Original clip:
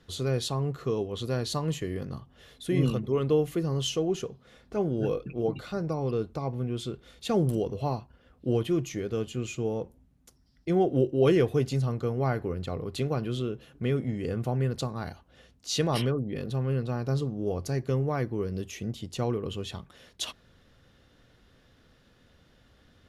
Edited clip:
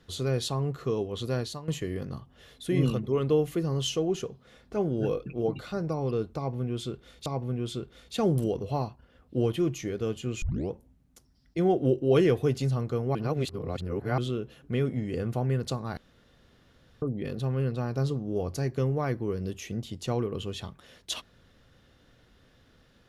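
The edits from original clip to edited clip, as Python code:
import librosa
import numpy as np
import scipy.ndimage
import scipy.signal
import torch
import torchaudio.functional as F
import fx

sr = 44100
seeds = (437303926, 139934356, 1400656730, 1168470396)

y = fx.edit(x, sr, fx.fade_out_to(start_s=1.4, length_s=0.28, curve='qua', floor_db=-12.5),
    fx.repeat(start_s=6.37, length_s=0.89, count=2),
    fx.tape_start(start_s=9.53, length_s=0.29),
    fx.reverse_span(start_s=12.26, length_s=1.03),
    fx.room_tone_fill(start_s=15.08, length_s=1.05), tone=tone)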